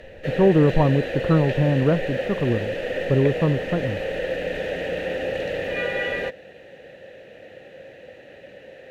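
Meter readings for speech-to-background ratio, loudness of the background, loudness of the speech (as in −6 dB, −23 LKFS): 6.0 dB, −27.5 LKFS, −21.5 LKFS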